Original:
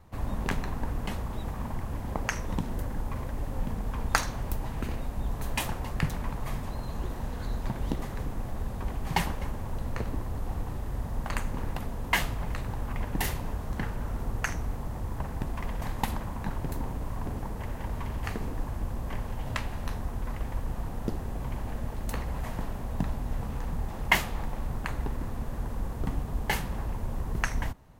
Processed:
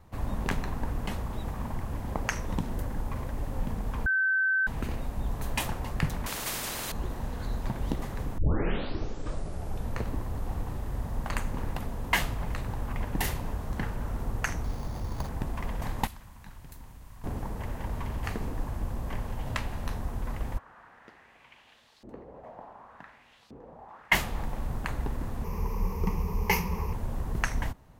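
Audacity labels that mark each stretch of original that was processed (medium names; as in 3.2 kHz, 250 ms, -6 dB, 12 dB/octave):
4.060000	4.670000	bleep 1.54 kHz -22.5 dBFS
6.260000	6.920000	spectrum-flattening compressor 4:1
8.380000	8.380000	tape start 1.58 s
14.640000	15.290000	careless resampling rate divided by 8×, down none, up hold
16.070000	17.240000	amplifier tone stack bass-middle-treble 5-5-5
20.570000	24.110000	LFO band-pass saw up 0.22 Hz -> 1.3 Hz 320–4600 Hz
25.440000	26.930000	rippled EQ curve crests per octave 0.81, crest to trough 16 dB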